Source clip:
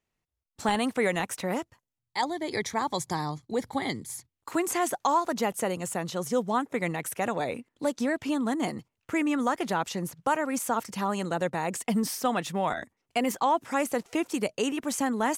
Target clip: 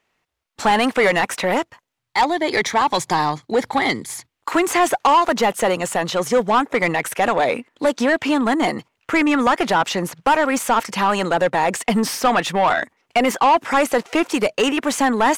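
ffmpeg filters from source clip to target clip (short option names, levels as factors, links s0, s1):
-filter_complex "[0:a]asplit=2[s0][s1];[s1]highpass=f=720:p=1,volume=7.08,asoftclip=type=tanh:threshold=0.211[s2];[s0][s2]amix=inputs=2:normalize=0,lowpass=f=5100:p=1,volume=0.501,bass=f=250:g=0,treble=f=4000:g=-5,volume=2.11"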